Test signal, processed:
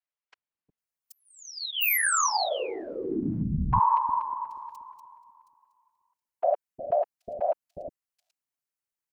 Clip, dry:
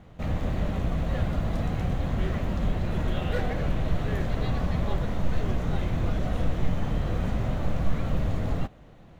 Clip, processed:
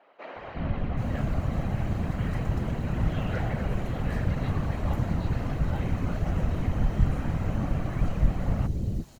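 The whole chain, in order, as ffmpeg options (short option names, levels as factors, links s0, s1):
-filter_complex "[0:a]bandreject=f=3500:w=8.4,afftfilt=real='hypot(re,im)*cos(2*PI*random(0))':imag='hypot(re,im)*sin(2*PI*random(1))':win_size=512:overlap=0.75,acrossover=split=430|4000[s0][s1][s2];[s0]adelay=360[s3];[s2]adelay=780[s4];[s3][s1][s4]amix=inputs=3:normalize=0,volume=1.88"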